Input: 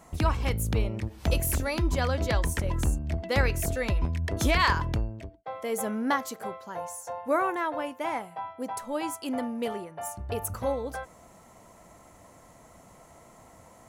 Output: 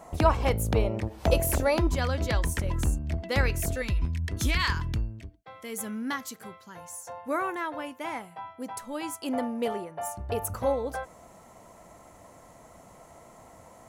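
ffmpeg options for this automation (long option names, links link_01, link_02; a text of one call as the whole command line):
ffmpeg -i in.wav -af "asetnsamples=nb_out_samples=441:pad=0,asendcmd='1.87 equalizer g -2.5;3.82 equalizer g -13.5;6.93 equalizer g -5.5;9.22 equalizer g 3',equalizer=frequency=650:width_type=o:width=1.6:gain=9" out.wav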